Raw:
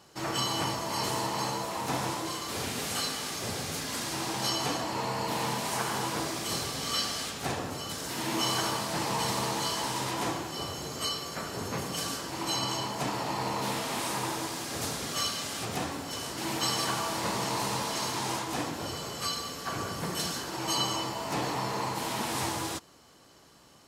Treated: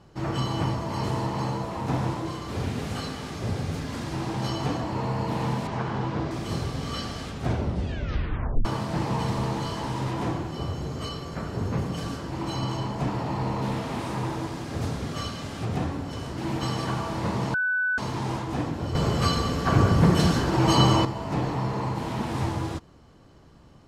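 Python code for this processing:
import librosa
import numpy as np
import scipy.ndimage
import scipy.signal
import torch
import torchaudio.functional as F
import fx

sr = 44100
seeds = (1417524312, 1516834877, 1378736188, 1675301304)

y = fx.air_absorb(x, sr, metres=120.0, at=(5.67, 6.31))
y = fx.clip_hard(y, sr, threshold_db=-25.5, at=(9.23, 14.32))
y = fx.edit(y, sr, fx.tape_stop(start_s=7.39, length_s=1.26),
    fx.bleep(start_s=17.54, length_s=0.44, hz=1500.0, db=-20.5),
    fx.clip_gain(start_s=18.95, length_s=2.1, db=9.5), tone=tone)
y = fx.riaa(y, sr, side='playback')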